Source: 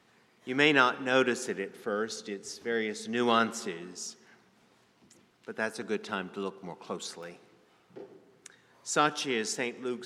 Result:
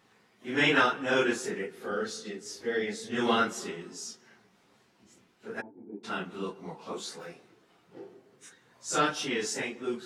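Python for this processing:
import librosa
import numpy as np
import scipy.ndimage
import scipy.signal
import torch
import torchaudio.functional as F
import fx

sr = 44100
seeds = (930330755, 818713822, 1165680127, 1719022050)

y = fx.phase_scramble(x, sr, seeds[0], window_ms=100)
y = fx.formant_cascade(y, sr, vowel='u', at=(5.6, 6.03), fade=0.02)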